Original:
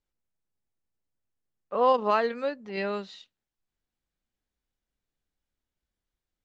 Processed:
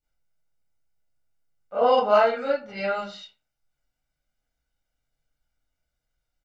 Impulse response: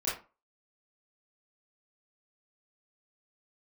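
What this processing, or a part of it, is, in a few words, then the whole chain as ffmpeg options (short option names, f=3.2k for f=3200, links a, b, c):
microphone above a desk: -filter_complex "[0:a]aecho=1:1:1.4:0.62[a];[1:a]atrim=start_sample=2205[b];[a][b]afir=irnorm=-1:irlink=0,volume=-2dB"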